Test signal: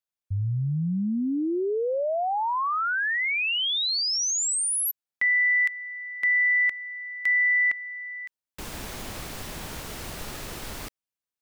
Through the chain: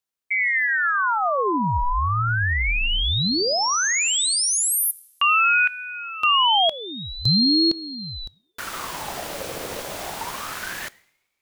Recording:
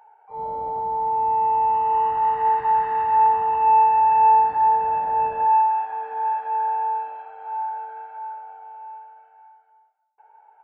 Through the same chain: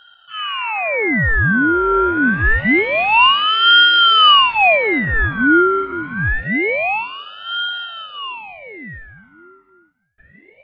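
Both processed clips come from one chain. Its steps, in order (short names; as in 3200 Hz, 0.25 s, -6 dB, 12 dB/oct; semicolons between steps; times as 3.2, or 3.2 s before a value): two-slope reverb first 0.75 s, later 2.9 s, from -24 dB, DRR 19 dB; ring modulator with a swept carrier 1400 Hz, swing 65%, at 0.26 Hz; gain +7.5 dB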